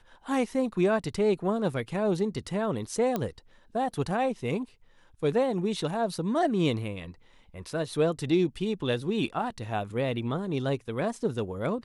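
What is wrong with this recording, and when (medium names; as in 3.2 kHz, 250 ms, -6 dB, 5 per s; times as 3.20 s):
3.16 s: pop -15 dBFS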